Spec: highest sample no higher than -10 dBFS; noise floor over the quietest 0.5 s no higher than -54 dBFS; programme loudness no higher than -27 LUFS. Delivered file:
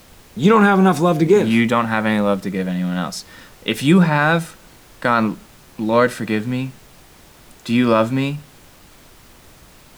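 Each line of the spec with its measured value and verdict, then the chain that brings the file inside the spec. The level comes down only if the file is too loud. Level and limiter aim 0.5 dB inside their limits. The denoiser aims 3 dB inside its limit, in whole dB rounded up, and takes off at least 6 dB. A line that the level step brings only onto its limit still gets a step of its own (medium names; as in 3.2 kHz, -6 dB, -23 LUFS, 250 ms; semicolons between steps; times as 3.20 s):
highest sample -3.0 dBFS: fail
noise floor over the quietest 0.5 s -46 dBFS: fail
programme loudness -17.5 LUFS: fail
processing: trim -10 dB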